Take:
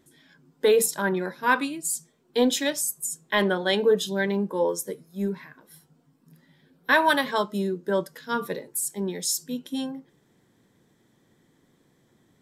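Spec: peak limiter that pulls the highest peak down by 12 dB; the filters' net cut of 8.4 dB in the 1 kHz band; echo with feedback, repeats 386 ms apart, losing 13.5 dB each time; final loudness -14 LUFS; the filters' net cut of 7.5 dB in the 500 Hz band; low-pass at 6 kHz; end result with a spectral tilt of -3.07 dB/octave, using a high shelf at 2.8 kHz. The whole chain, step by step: low-pass 6 kHz; peaking EQ 500 Hz -7.5 dB; peaking EQ 1 kHz -8.5 dB; treble shelf 2.8 kHz +7 dB; peak limiter -20.5 dBFS; feedback delay 386 ms, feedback 21%, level -13.5 dB; trim +17.5 dB

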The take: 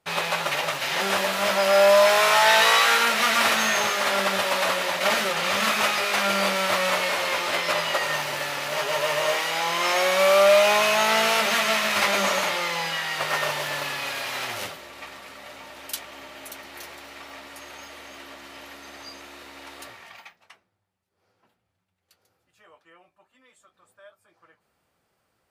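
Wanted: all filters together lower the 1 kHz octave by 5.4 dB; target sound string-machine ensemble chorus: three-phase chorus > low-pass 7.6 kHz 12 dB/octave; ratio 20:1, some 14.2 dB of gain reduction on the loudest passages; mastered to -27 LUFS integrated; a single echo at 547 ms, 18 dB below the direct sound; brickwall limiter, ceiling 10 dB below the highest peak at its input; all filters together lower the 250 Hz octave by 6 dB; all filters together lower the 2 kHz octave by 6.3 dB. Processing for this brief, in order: peaking EQ 250 Hz -8.5 dB; peaking EQ 1 kHz -4.5 dB; peaking EQ 2 kHz -6.5 dB; compression 20:1, threshold -30 dBFS; peak limiter -26 dBFS; delay 547 ms -18 dB; three-phase chorus; low-pass 7.6 kHz 12 dB/octave; trim +12 dB

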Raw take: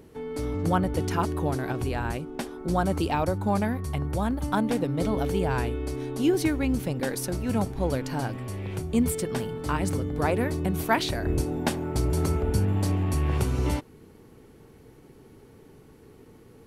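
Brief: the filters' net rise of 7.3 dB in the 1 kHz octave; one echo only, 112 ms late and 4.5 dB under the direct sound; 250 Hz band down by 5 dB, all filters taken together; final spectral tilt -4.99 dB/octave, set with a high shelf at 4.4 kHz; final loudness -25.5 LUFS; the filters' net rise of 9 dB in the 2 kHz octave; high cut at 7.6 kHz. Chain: low-pass 7.6 kHz; peaking EQ 250 Hz -7.5 dB; peaking EQ 1 kHz +7.5 dB; peaking EQ 2 kHz +8 dB; treble shelf 4.4 kHz +5.5 dB; delay 112 ms -4.5 dB; trim -1 dB

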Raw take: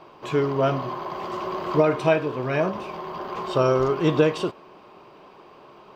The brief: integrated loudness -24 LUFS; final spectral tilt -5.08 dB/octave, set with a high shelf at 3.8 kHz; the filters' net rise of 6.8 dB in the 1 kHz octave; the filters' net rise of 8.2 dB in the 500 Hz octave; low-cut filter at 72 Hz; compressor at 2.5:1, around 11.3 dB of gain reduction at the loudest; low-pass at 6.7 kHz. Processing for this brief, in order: high-pass 72 Hz; low-pass 6.7 kHz; peaking EQ 500 Hz +8.5 dB; peaking EQ 1 kHz +5.5 dB; treble shelf 3.8 kHz +4.5 dB; compression 2.5:1, threshold -24 dBFS; trim +1.5 dB

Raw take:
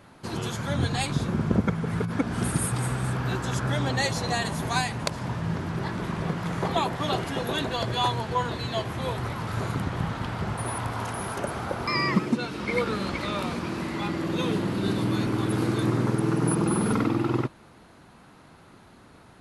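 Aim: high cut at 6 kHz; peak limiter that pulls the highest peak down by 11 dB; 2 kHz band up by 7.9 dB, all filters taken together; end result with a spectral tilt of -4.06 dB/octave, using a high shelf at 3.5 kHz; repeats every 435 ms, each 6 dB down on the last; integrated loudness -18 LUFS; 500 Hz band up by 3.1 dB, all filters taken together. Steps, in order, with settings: low-pass 6 kHz; peaking EQ 500 Hz +3.5 dB; peaking EQ 2 kHz +8 dB; treble shelf 3.5 kHz +5.5 dB; peak limiter -15 dBFS; feedback delay 435 ms, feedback 50%, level -6 dB; trim +7 dB

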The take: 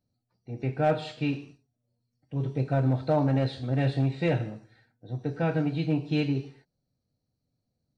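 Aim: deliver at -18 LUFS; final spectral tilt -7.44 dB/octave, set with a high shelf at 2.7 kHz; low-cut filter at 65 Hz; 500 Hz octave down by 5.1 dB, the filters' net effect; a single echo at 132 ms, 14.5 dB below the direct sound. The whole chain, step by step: high-pass 65 Hz; peaking EQ 500 Hz -6 dB; treble shelf 2.7 kHz -7.5 dB; delay 132 ms -14.5 dB; trim +12 dB

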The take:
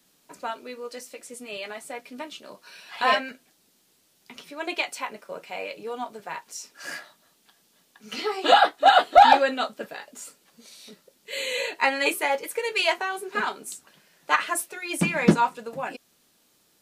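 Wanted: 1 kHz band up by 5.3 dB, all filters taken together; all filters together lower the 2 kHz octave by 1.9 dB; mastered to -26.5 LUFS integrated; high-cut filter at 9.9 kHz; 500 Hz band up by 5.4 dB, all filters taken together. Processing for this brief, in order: low-pass 9.9 kHz; peaking EQ 500 Hz +5 dB; peaking EQ 1 kHz +6 dB; peaking EQ 2 kHz -5 dB; trim -7.5 dB

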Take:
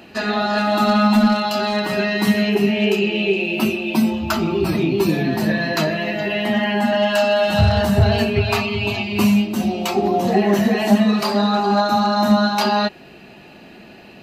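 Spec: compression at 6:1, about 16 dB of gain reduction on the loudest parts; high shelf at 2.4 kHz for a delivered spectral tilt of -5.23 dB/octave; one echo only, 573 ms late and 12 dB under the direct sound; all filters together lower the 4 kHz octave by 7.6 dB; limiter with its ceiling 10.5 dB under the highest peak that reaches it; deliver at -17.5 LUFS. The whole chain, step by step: treble shelf 2.4 kHz -3.5 dB; peaking EQ 4 kHz -7 dB; compression 6:1, threshold -28 dBFS; peak limiter -27.5 dBFS; delay 573 ms -12 dB; trim +17.5 dB

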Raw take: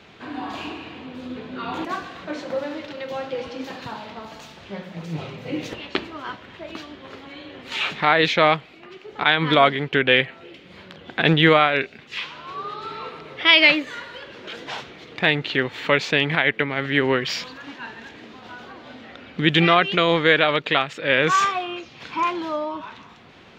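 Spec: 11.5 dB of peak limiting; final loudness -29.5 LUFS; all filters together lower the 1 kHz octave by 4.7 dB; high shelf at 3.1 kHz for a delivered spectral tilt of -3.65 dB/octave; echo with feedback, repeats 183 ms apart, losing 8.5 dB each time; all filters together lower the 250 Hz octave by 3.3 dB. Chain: peaking EQ 250 Hz -4.5 dB; peaking EQ 1 kHz -7 dB; treble shelf 3.1 kHz +5 dB; peak limiter -12.5 dBFS; feedback delay 183 ms, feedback 38%, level -8.5 dB; trim -3 dB

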